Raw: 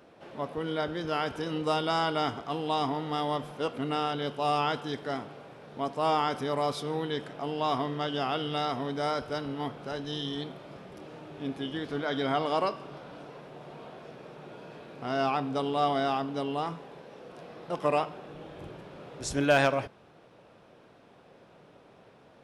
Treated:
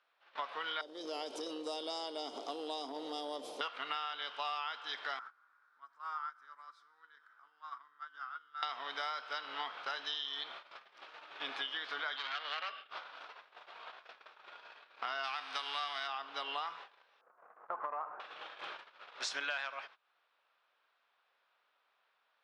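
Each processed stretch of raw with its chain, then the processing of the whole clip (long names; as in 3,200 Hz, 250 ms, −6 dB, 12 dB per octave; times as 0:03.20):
0:00.81–0:03.61: drawn EQ curve 170 Hz 0 dB, 270 Hz +15 dB, 560 Hz +7 dB, 1,500 Hz −26 dB, 9,600 Hz +14 dB + downward compressor 3 to 1, threshold −27 dBFS
0:05.19–0:08.63: drawn EQ curve 230 Hz 0 dB, 670 Hz −9 dB, 1,400 Hz +12 dB, 2,800 Hz −13 dB, 7,700 Hz +4 dB + downward compressor 4 to 1, threshold −37 dBFS + tuned comb filter 95 Hz, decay 1.3 s
0:12.16–0:12.90: Butterworth band-reject 990 Hz, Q 2.9 + loudspeaker in its box 170–4,300 Hz, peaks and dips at 350 Hz −7 dB, 700 Hz −5 dB, 3,100 Hz +6 dB + saturating transformer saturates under 2,100 Hz
0:15.23–0:16.06: spectral envelope flattened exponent 0.6 + notch filter 7,200 Hz, Q 5.4
0:17.21–0:18.20: inverse Chebyshev low-pass filter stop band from 3,500 Hz, stop band 50 dB + downward compressor 3 to 1, threshold −30 dBFS
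whole clip: noise gate −43 dBFS, range −24 dB; Chebyshev band-pass filter 1,200–4,300 Hz, order 2; downward compressor 10 to 1, threshold −48 dBFS; level +12 dB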